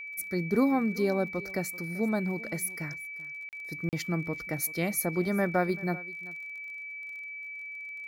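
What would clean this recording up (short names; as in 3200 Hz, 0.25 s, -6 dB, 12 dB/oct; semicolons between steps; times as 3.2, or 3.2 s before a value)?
de-click; notch 2300 Hz, Q 30; interpolate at 3.49/3.89, 38 ms; inverse comb 0.386 s -20 dB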